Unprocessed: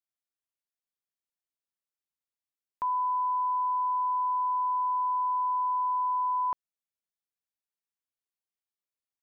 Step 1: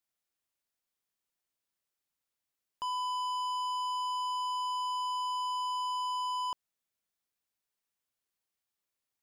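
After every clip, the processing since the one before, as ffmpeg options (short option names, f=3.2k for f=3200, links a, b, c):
-af "asoftclip=type=tanh:threshold=-38.5dB,volume=5.5dB"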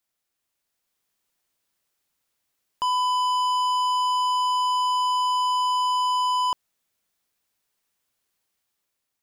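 -af "dynaudnorm=f=310:g=5:m=4.5dB,volume=6.5dB"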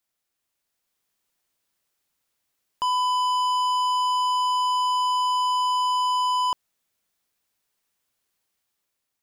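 -af anull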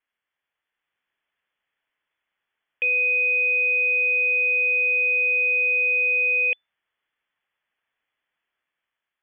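-af "lowpass=f=3k:t=q:w=0.5098,lowpass=f=3k:t=q:w=0.6013,lowpass=f=3k:t=q:w=0.9,lowpass=f=3k:t=q:w=2.563,afreqshift=-3500,equalizer=f=1.8k:w=2.2:g=6.5"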